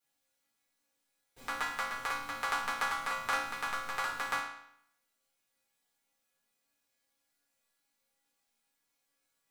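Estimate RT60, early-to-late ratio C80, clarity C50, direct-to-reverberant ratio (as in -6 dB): 0.70 s, 6.0 dB, 2.5 dB, -12.0 dB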